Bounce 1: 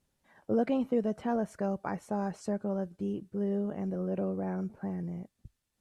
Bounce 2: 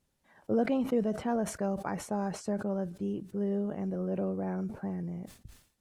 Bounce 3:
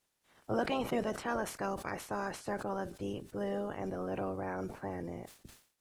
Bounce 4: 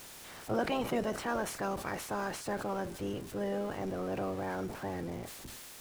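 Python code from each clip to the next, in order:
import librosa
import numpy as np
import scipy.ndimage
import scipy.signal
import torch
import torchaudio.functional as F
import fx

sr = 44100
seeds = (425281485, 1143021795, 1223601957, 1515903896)

y1 = fx.sustainer(x, sr, db_per_s=120.0)
y2 = fx.spec_clip(y1, sr, under_db=20)
y2 = y2 * librosa.db_to_amplitude(-4.0)
y3 = y2 + 0.5 * 10.0 ** (-43.5 / 20.0) * np.sign(y2)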